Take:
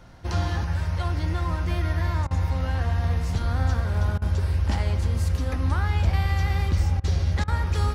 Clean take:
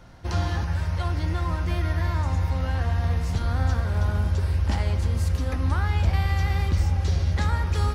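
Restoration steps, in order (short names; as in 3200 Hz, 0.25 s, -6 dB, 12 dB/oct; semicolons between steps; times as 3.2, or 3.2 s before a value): interpolate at 2.27/4.18/7/7.44, 37 ms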